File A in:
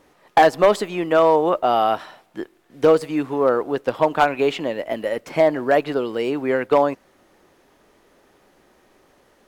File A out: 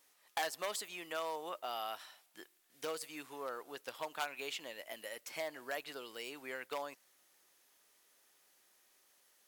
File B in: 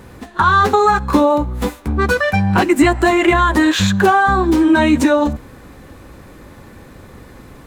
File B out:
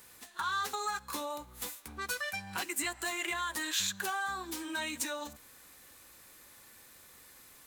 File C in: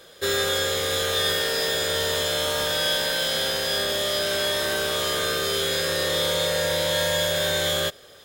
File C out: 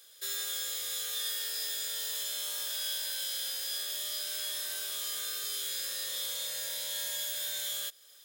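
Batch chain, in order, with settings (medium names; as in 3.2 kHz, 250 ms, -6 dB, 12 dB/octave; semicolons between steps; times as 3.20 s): pre-emphasis filter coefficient 0.97; in parallel at -1 dB: compression, threshold -40 dBFS; on the sum: trim -7.5 dB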